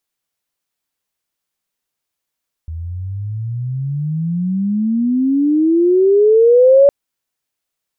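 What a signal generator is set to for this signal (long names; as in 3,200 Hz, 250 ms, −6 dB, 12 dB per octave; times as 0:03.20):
glide logarithmic 79 Hz → 570 Hz −23 dBFS → −4.5 dBFS 4.21 s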